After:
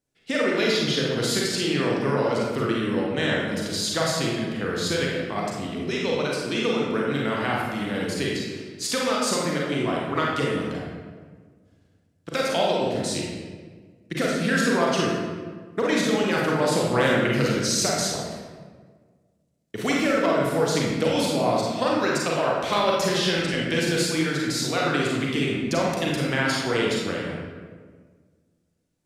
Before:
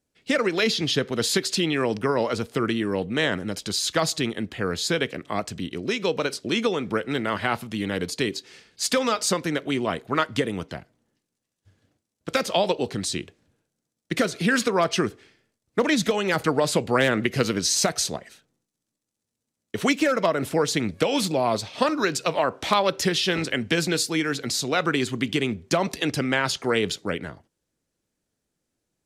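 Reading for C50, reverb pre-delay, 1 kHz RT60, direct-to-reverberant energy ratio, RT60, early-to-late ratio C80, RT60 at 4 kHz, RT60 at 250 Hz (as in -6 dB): -1.0 dB, 35 ms, 1.4 s, -3.5 dB, 1.6 s, 2.0 dB, 0.95 s, 1.9 s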